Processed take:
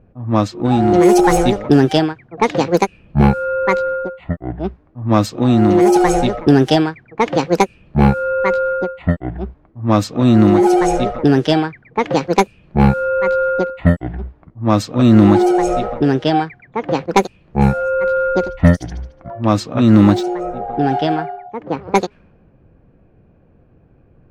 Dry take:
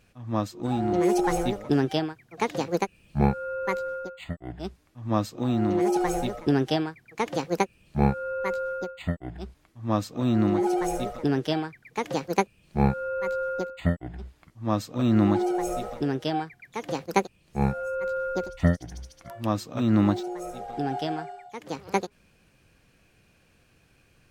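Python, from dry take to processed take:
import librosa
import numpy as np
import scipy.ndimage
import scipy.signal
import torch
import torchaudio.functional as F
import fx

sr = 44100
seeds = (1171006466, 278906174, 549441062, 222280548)

y = fx.env_lowpass(x, sr, base_hz=640.0, full_db=-20.0)
y = fx.fold_sine(y, sr, drive_db=5, ceiling_db=-5.5)
y = F.gain(torch.from_numpy(y), 4.0).numpy()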